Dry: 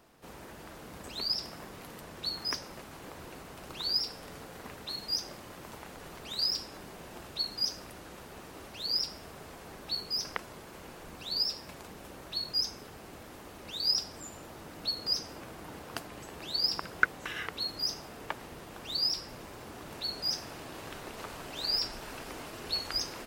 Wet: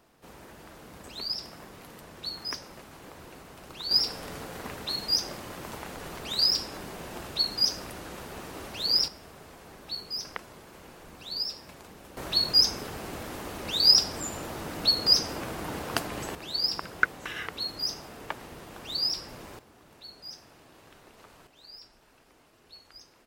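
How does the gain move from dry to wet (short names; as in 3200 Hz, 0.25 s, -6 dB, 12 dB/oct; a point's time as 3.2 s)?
-1 dB
from 3.91 s +6.5 dB
from 9.08 s -1.5 dB
from 12.17 s +10 dB
from 16.35 s +1.5 dB
from 19.59 s -11 dB
from 21.47 s -18 dB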